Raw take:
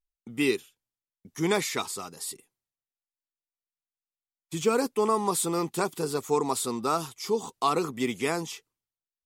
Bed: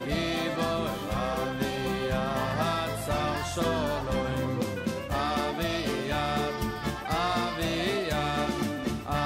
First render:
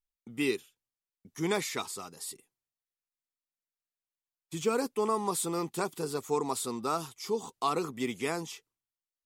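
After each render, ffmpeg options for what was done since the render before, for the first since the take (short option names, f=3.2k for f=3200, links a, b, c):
-af "volume=-4.5dB"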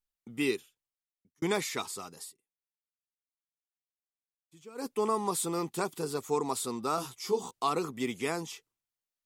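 -filter_complex "[0:a]asettb=1/sr,asplit=3[a][b][c];[a]atrim=end=6.964[d];[b]atrim=start=6.96:end=7.51,asetpts=PTS-STARTPTS,afade=t=in:d=0.004:c=qsin,afade=t=out:st=0.546:d=0.004:c=qsin,asplit=2[e][f];[f]adelay=16,volume=-3dB[g];[e][g]amix=inputs=2:normalize=0,atrim=end_sample=24255[h];[c]atrim=start=7.506[i];[d][h]acrossfade=d=0.004:c1=hsin:c2=qsin[j];[j][i]acrossfade=d=0.004:c1=qsin:c2=hsin,asplit=4[k][l][m][n];[k]atrim=end=1.42,asetpts=PTS-STARTPTS,afade=t=out:st=0.5:d=0.92[o];[l]atrim=start=1.42:end=2.33,asetpts=PTS-STARTPTS,afade=t=in:d=0.004:c=hsin,afade=t=out:st=0.77:d=0.14:silence=0.0944061[p];[m]atrim=start=2.33:end=4.75,asetpts=PTS-STARTPTS,volume=-20.5dB[q];[n]atrim=start=4.75,asetpts=PTS-STARTPTS,afade=t=in:d=0.14:silence=0.0944061[r];[o][p][q][r]concat=n=4:v=0:a=1"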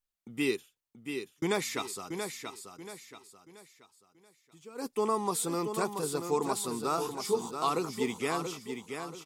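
-af "aecho=1:1:681|1362|2043|2724:0.447|0.161|0.0579|0.0208"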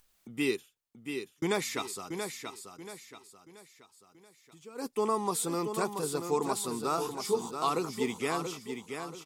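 -af "acompressor=mode=upward:threshold=-52dB:ratio=2.5"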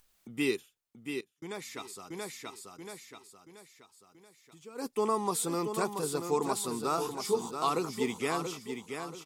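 -filter_complex "[0:a]asplit=2[a][b];[a]atrim=end=1.21,asetpts=PTS-STARTPTS,afade=t=out:st=1.206:d=0.004:c=hsin:silence=0.11885[c];[b]atrim=start=1.21,asetpts=PTS-STARTPTS,afade=t=in:d=1.65:silence=0.11885[d];[c][d]concat=n=2:v=0:a=1"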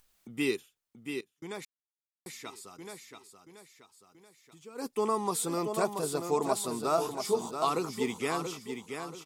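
-filter_complex "[0:a]asettb=1/sr,asplit=3[a][b][c];[a]atrim=end=5.574[d];[b]atrim=start=5.57:end=7.65,asetpts=PTS-STARTPTS,afade=t=in:d=0.004:c=qsin,afade=t=out:st=2.076:d=0.004:c=qsin,equalizer=f=640:t=o:w=0.21:g=12[e];[c]atrim=start=7.646[f];[d][e]acrossfade=d=0.004:c1=hsin:c2=qsin[g];[g][f]acrossfade=d=0.004:c1=qsin:c2=hsin,asplit=3[h][i][j];[h]atrim=end=1.65,asetpts=PTS-STARTPTS,afade=t=out:st=1.646:d=0.004:c=hsin[k];[i]atrim=start=1.65:end=2.26,asetpts=PTS-STARTPTS,volume=0[l];[j]atrim=start=2.26,asetpts=PTS-STARTPTS,afade=t=in:d=0.004:c=hsin[m];[k][l][m]concat=n=3:v=0:a=1"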